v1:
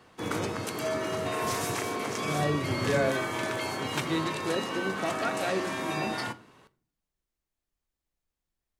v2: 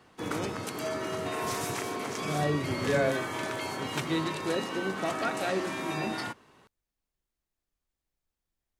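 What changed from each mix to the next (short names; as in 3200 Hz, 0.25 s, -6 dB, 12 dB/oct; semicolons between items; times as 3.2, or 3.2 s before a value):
background: send off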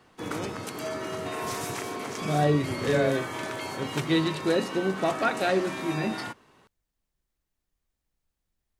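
second voice +6.5 dB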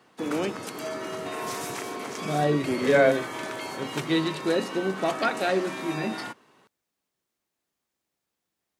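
first voice +8.5 dB; master: add HPF 160 Hz 12 dB/oct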